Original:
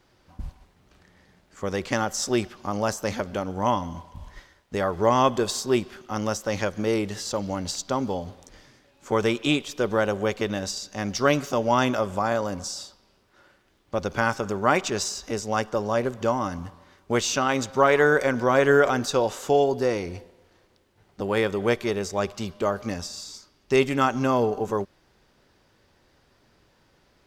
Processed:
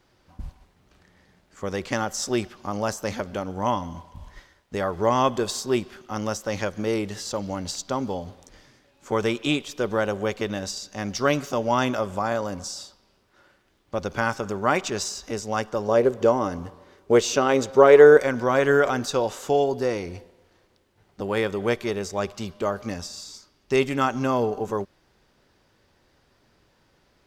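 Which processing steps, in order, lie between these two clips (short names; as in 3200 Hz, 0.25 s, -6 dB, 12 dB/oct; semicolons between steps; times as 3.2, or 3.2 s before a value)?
15.88–18.17 bell 440 Hz +11 dB 0.9 oct; gain -1 dB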